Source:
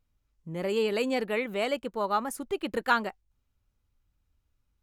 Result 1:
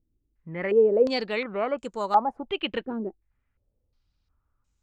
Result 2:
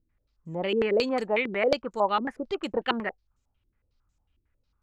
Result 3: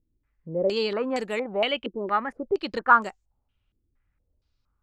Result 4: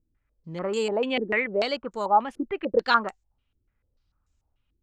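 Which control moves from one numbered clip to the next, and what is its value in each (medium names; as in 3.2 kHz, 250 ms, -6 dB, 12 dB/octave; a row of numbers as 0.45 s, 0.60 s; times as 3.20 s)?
step-sequenced low-pass, rate: 2.8 Hz, 11 Hz, 4.3 Hz, 6.8 Hz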